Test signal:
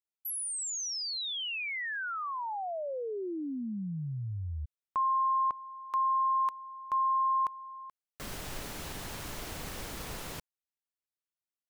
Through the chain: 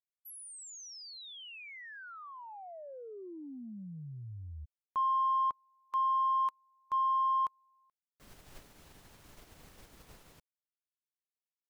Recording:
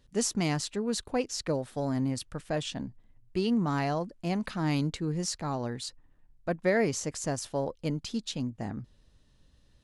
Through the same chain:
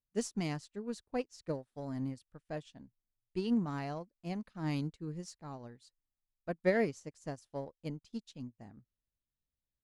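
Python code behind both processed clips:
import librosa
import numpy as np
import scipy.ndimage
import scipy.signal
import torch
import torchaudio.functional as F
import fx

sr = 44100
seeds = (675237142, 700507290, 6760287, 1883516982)

p1 = fx.low_shelf(x, sr, hz=420.0, db=2.0)
p2 = 10.0 ** (-29.0 / 20.0) * np.tanh(p1 / 10.0 ** (-29.0 / 20.0))
p3 = p1 + (p2 * 10.0 ** (-11.0 / 20.0))
p4 = fx.upward_expand(p3, sr, threshold_db=-42.0, expansion=2.5)
y = p4 * 10.0 ** (-3.0 / 20.0)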